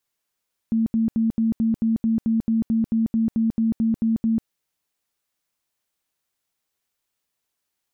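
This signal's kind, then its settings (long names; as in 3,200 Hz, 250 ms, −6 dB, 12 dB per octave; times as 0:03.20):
tone bursts 225 Hz, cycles 32, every 0.22 s, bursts 17, −17 dBFS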